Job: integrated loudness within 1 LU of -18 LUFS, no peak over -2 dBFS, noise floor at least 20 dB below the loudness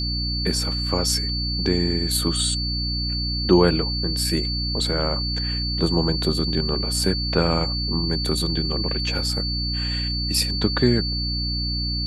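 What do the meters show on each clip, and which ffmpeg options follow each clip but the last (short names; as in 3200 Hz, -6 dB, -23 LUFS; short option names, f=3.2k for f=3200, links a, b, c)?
hum 60 Hz; harmonics up to 300 Hz; hum level -25 dBFS; steady tone 4500 Hz; tone level -26 dBFS; loudness -22.0 LUFS; peak -3.5 dBFS; loudness target -18.0 LUFS
-> -af "bandreject=f=60:t=h:w=4,bandreject=f=120:t=h:w=4,bandreject=f=180:t=h:w=4,bandreject=f=240:t=h:w=4,bandreject=f=300:t=h:w=4"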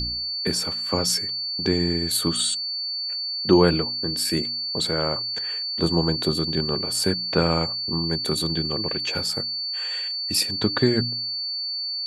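hum none; steady tone 4500 Hz; tone level -26 dBFS
-> -af "bandreject=f=4.5k:w=30"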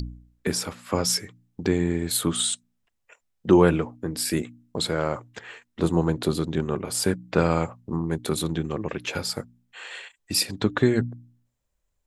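steady tone none; loudness -25.5 LUFS; peak -4.5 dBFS; loudness target -18.0 LUFS
-> -af "volume=7.5dB,alimiter=limit=-2dB:level=0:latency=1"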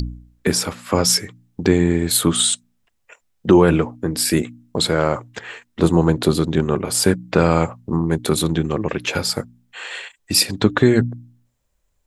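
loudness -18.5 LUFS; peak -2.0 dBFS; noise floor -68 dBFS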